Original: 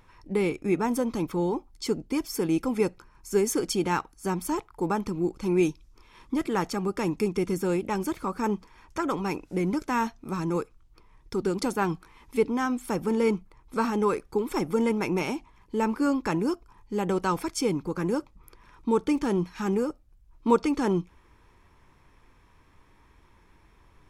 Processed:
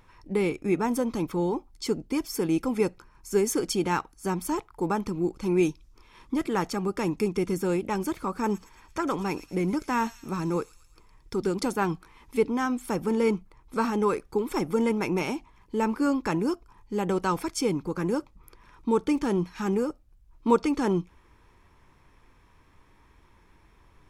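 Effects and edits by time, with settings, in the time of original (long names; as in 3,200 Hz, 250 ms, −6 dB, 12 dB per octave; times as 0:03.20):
0:08.24–0:11.50: delay with a high-pass on its return 112 ms, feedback 53%, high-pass 4,000 Hz, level −6.5 dB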